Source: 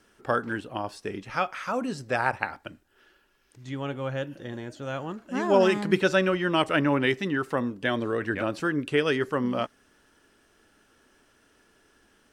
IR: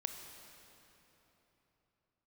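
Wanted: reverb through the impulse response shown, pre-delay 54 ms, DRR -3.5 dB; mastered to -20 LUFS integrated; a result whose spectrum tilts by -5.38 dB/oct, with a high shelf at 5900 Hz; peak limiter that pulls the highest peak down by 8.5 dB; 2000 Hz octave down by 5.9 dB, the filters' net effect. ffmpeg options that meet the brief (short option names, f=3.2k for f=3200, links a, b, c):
-filter_complex "[0:a]equalizer=f=2k:t=o:g=-7.5,highshelf=f=5.9k:g=-5.5,alimiter=limit=-17dB:level=0:latency=1,asplit=2[a][b];[1:a]atrim=start_sample=2205,adelay=54[c];[b][c]afir=irnorm=-1:irlink=0,volume=4dB[d];[a][d]amix=inputs=2:normalize=0,volume=5dB"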